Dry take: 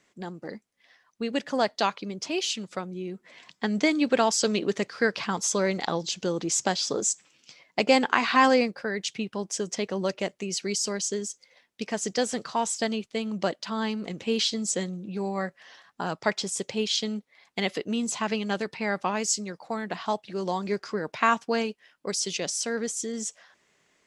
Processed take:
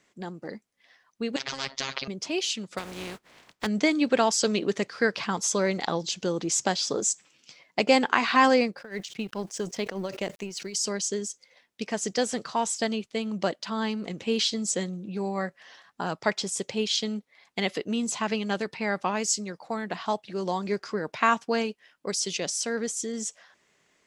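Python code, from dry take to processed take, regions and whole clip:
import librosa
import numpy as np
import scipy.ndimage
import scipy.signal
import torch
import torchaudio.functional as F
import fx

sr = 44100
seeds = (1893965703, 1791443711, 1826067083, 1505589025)

y = fx.chain(x, sr, fx.lowpass(hz=5100.0, slope=24),
    fx.robotise(hz=135.0),
    fx.spectral_comp(ratio=10.0), at=(1.36, 2.08))
y = fx.spec_flatten(y, sr, power=0.32, at=(2.77, 3.65), fade=0.02)
y = fx.lowpass(y, sr, hz=2200.0, slope=6, at=(2.77, 3.65), fade=0.02)
y = fx.chain(y, sr, fx.law_mismatch(coded='A'),
    fx.tremolo(hz=4.9, depth=0.89),
    fx.sustainer(db_per_s=82.0), at=(8.78, 10.75))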